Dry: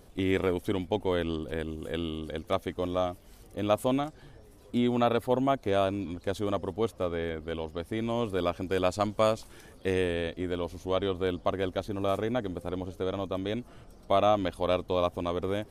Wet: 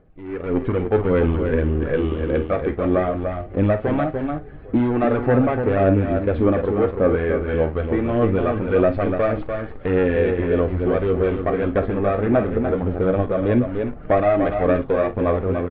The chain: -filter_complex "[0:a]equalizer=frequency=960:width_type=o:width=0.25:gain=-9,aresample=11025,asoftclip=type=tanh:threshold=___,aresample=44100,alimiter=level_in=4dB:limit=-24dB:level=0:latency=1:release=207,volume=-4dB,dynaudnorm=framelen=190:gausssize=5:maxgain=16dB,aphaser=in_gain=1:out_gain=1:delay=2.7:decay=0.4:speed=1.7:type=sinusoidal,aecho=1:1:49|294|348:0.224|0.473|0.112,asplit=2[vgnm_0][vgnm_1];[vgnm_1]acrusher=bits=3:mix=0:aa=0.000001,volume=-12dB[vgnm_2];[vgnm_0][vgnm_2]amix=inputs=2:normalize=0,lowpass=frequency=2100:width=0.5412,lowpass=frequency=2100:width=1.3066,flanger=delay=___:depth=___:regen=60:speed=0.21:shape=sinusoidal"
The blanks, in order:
-26dB, 6.3, 8.6